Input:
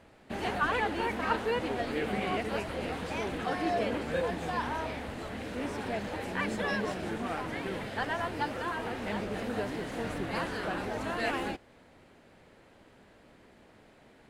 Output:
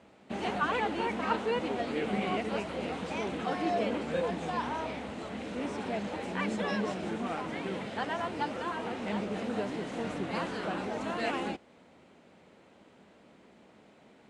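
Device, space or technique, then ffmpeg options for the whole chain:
car door speaker: -af "highpass=97,equalizer=f=110:t=q:w=4:g=-8,equalizer=f=200:t=q:w=4:g=4,equalizer=f=1.7k:t=q:w=4:g=-5,equalizer=f=4.7k:t=q:w=4:g=-3,lowpass=f=8.7k:w=0.5412,lowpass=f=8.7k:w=1.3066"

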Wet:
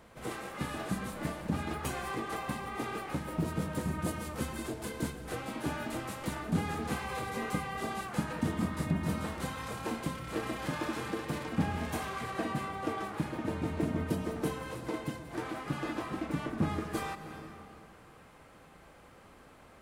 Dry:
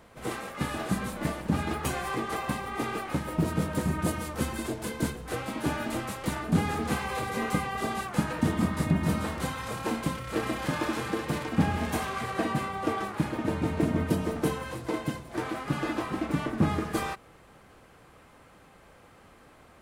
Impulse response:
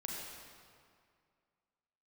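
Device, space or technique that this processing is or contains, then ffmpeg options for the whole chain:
ducked reverb: -filter_complex "[0:a]asplit=3[a][b][c];[1:a]atrim=start_sample=2205[d];[b][d]afir=irnorm=-1:irlink=0[e];[c]apad=whole_len=873975[f];[e][f]sidechaincompress=threshold=-39dB:ratio=8:attack=5.6:release=254,volume=0dB[g];[a][g]amix=inputs=2:normalize=0,volume=-6.5dB"

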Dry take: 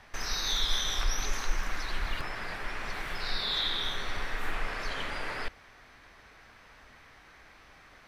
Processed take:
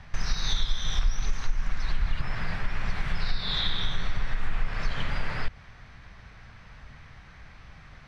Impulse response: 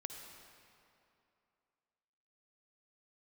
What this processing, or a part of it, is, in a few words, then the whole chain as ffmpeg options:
jukebox: -af "lowpass=6.3k,lowshelf=f=220:t=q:w=1.5:g=11.5,acompressor=threshold=-22dB:ratio=4,volume=2dB"

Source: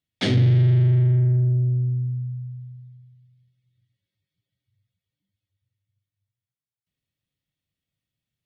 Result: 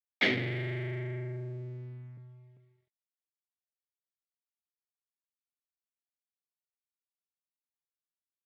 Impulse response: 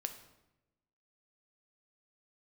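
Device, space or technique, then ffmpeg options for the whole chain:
pocket radio on a weak battery: -filter_complex "[0:a]asettb=1/sr,asplit=3[a][b][c];[a]atrim=end=2.174[d];[b]atrim=start=2.17:end=2.57,asetpts=PTS-STARTPTS,afade=t=in:d=0.004:c=qsin,afade=t=out:st=0.396:d=0.004:c=qsin,aecho=1:1:2.4:0.67,atrim=end_sample=17640[e];[c]atrim=start=2.566[f];[d][e]acrossfade=d=0.004:c1=hsin:c2=qsin[g];[g][f]acrossfade=d=0.004:c1=qsin:c2=hsin,highpass=320,lowpass=3.8k,aeval=exprs='sgn(val(0))*max(abs(val(0))-0.00133,0)':c=same,equalizer=f=2.1k:t=o:w=0.51:g=12,volume=-3.5dB"

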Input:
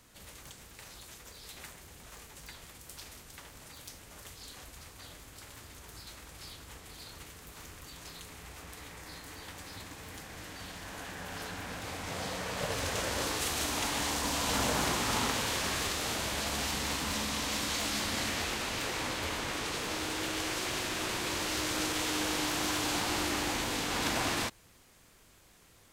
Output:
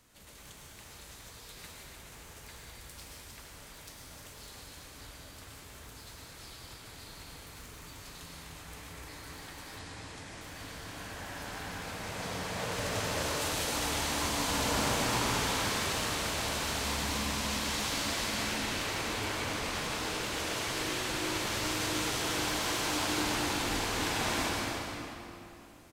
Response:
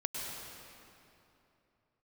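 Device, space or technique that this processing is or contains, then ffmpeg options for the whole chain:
cave: -filter_complex "[0:a]aecho=1:1:301:0.355[a];[1:a]atrim=start_sample=2205[b];[a][b]afir=irnorm=-1:irlink=0,asettb=1/sr,asplit=3[c][d][e];[c]atrim=end=9.794[f];[d]atrim=start=9.79:end=10.41,asetpts=PTS-STARTPTS,afade=t=in:d=0.004:c=qsin,afade=t=out:st=0.616:d=0.004:c=qsin,lowpass=f=9.7k:w=0.5412,lowpass=f=9.7k:w=1.3066[g];[e]atrim=start=10.406[h];[f][g]acrossfade=d=0.004:c1=hsin:c2=qsin[i];[i][h]acrossfade=d=0.004:c1=qsin:c2=hsin,volume=-3dB"

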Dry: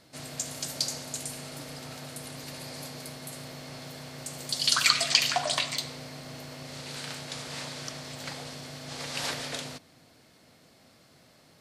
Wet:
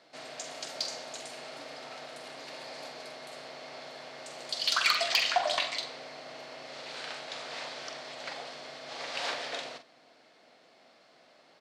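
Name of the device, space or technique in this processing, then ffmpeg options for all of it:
intercom: -filter_complex "[0:a]highpass=390,lowpass=4.3k,equalizer=f=700:t=o:w=0.36:g=4,asoftclip=type=tanh:threshold=-15dB,asplit=2[a][b];[b]adelay=45,volume=-9dB[c];[a][c]amix=inputs=2:normalize=0"

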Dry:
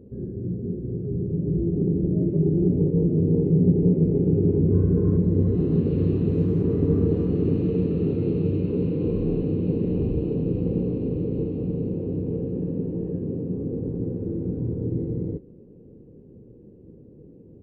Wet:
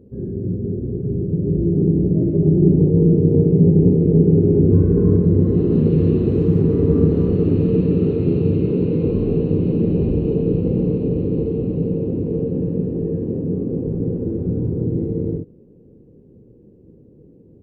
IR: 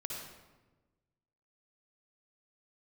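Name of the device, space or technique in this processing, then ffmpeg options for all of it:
keyed gated reverb: -filter_complex "[0:a]asplit=3[a][b][c];[1:a]atrim=start_sample=2205[d];[b][d]afir=irnorm=-1:irlink=0[e];[c]apad=whole_len=777090[f];[e][f]sidechaingate=range=-33dB:threshold=-35dB:ratio=16:detection=peak,volume=1dB[g];[a][g]amix=inputs=2:normalize=0"

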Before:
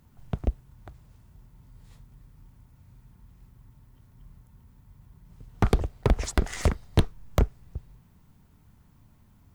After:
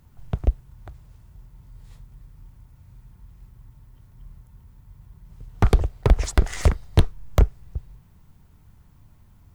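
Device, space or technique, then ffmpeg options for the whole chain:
low shelf boost with a cut just above: -af "lowshelf=f=87:g=6,equalizer=f=230:t=o:w=0.7:g=-4.5,volume=2.5dB"

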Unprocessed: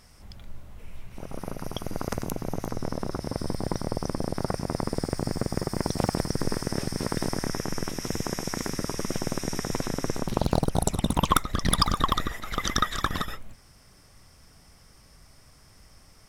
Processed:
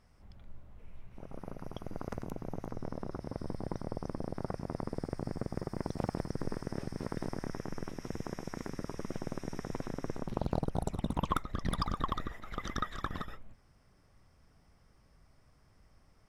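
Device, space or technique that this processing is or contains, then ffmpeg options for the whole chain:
through cloth: -af "highshelf=f=3.2k:g=-14,volume=-8.5dB"

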